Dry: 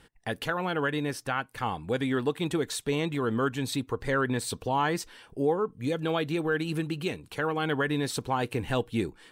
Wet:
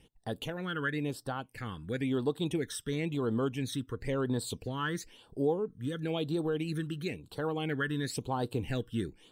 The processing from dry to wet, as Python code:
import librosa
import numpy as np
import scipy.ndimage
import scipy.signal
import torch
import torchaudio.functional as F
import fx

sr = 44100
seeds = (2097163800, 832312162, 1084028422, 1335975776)

y = fx.phaser_stages(x, sr, stages=12, low_hz=730.0, high_hz=2300.0, hz=0.98, feedback_pct=25)
y = y * librosa.db_to_amplitude(-3.0)